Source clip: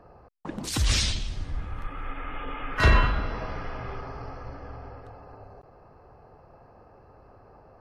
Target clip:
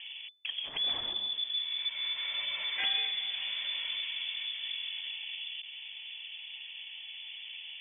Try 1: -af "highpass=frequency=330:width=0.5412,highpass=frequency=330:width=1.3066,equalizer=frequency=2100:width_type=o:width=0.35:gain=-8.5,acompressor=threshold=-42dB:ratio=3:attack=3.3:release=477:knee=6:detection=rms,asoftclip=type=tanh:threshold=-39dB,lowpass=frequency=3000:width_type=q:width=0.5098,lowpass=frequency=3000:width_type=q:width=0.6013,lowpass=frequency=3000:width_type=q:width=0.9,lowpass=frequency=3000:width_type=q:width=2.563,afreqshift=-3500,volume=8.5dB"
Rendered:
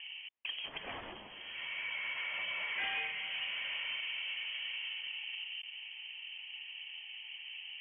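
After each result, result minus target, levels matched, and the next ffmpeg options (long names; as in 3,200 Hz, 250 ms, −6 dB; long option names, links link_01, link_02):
soft clipping: distortion +14 dB; 250 Hz band +6.5 dB
-af "highpass=frequency=330:width=0.5412,highpass=frequency=330:width=1.3066,equalizer=frequency=2100:width_type=o:width=0.35:gain=-8.5,acompressor=threshold=-42dB:ratio=3:attack=3.3:release=477:knee=6:detection=rms,asoftclip=type=tanh:threshold=-28dB,lowpass=frequency=3000:width_type=q:width=0.5098,lowpass=frequency=3000:width_type=q:width=0.6013,lowpass=frequency=3000:width_type=q:width=0.9,lowpass=frequency=3000:width_type=q:width=2.563,afreqshift=-3500,volume=8.5dB"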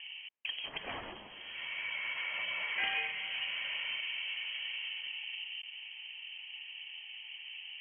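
250 Hz band +6.5 dB
-af "equalizer=frequency=2100:width_type=o:width=0.35:gain=-8.5,acompressor=threshold=-42dB:ratio=3:attack=3.3:release=477:knee=6:detection=rms,asoftclip=type=tanh:threshold=-28dB,lowpass=frequency=3000:width_type=q:width=0.5098,lowpass=frequency=3000:width_type=q:width=0.6013,lowpass=frequency=3000:width_type=q:width=0.9,lowpass=frequency=3000:width_type=q:width=2.563,afreqshift=-3500,volume=8.5dB"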